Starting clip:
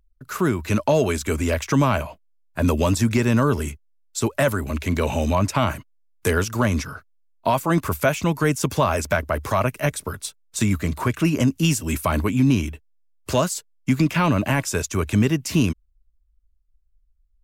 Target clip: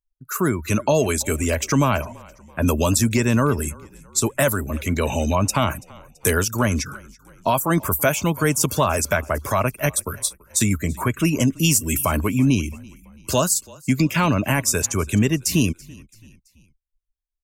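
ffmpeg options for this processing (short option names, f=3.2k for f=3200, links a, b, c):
-filter_complex "[0:a]crystalizer=i=2:c=0,afftdn=nr=27:nf=-34,asplit=4[a][b][c][d];[b]adelay=333,afreqshift=-32,volume=-23.5dB[e];[c]adelay=666,afreqshift=-64,volume=-29.7dB[f];[d]adelay=999,afreqshift=-96,volume=-35.9dB[g];[a][e][f][g]amix=inputs=4:normalize=0"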